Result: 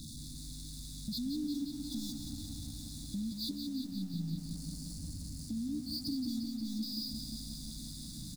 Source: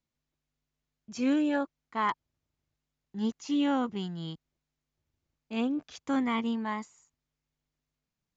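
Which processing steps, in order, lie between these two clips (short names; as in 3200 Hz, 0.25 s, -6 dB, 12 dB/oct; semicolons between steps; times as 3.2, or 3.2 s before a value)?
nonlinear frequency compression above 2400 Hz 1.5:1; 3.62–6.13 spectral delete 500–4200 Hz; power-law curve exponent 0.35; FFT band-reject 320–3400 Hz; 3.51–4.14 metallic resonator 62 Hz, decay 0.27 s, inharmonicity 0.008; compressor 4:1, threshold -37 dBFS, peak gain reduction 14 dB; on a send: echo 1.016 s -23 dB; on the sum: lo-fi delay 0.177 s, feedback 80%, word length 10-bit, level -7 dB; gain -1.5 dB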